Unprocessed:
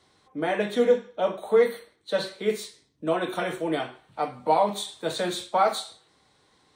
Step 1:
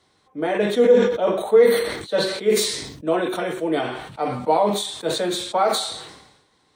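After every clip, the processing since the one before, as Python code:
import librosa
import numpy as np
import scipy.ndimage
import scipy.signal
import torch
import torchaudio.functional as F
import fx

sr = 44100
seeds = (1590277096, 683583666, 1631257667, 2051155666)

y = fx.dynamic_eq(x, sr, hz=400.0, q=1.2, threshold_db=-35.0, ratio=4.0, max_db=6)
y = fx.sustainer(y, sr, db_per_s=57.0)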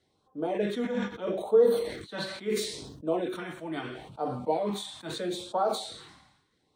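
y = fx.filter_lfo_notch(x, sr, shape='sine', hz=0.76, low_hz=420.0, high_hz=2200.0, q=0.9)
y = fx.high_shelf(y, sr, hz=3100.0, db=-7.5)
y = y * librosa.db_to_amplitude(-6.5)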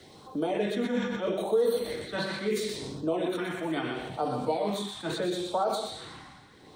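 y = x + 10.0 ** (-6.5 / 20.0) * np.pad(x, (int(121 * sr / 1000.0), 0))[:len(x)]
y = fx.band_squash(y, sr, depth_pct=70)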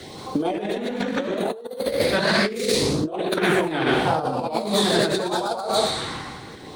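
y = fx.echo_pitch(x, sr, ms=178, semitones=1, count=3, db_per_echo=-3.0)
y = fx.over_compress(y, sr, threshold_db=-31.0, ratio=-0.5)
y = y * librosa.db_to_amplitude(9.0)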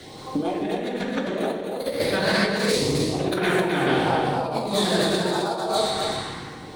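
y = x + 10.0 ** (-5.0 / 20.0) * np.pad(x, (int(262 * sr / 1000.0), 0))[:len(x)]
y = fx.room_shoebox(y, sr, seeds[0], volume_m3=130.0, walls='mixed', distance_m=0.51)
y = y * librosa.db_to_amplitude(-3.5)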